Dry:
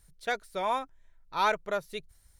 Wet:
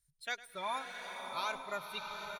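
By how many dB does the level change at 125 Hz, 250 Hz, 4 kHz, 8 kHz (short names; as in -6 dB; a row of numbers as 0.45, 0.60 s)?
-8.5, -10.0, -2.0, -1.5 dB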